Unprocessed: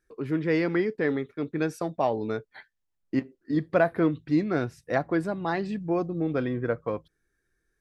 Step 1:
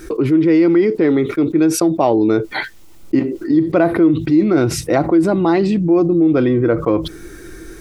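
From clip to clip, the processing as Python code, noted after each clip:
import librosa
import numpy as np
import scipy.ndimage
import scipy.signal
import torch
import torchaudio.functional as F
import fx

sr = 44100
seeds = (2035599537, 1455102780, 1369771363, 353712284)

y = fx.peak_eq(x, sr, hz=330.0, db=13.0, octaves=0.28)
y = fx.notch(y, sr, hz=1700.0, q=6.1)
y = fx.env_flatten(y, sr, amount_pct=70)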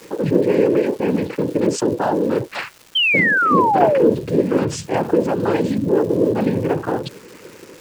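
y = fx.noise_vocoder(x, sr, seeds[0], bands=8)
y = fx.spec_paint(y, sr, seeds[1], shape='fall', start_s=2.95, length_s=1.15, low_hz=430.0, high_hz=3200.0, level_db=-12.0)
y = fx.dmg_crackle(y, sr, seeds[2], per_s=520.0, level_db=-29.0)
y = F.gain(torch.from_numpy(y), -4.0).numpy()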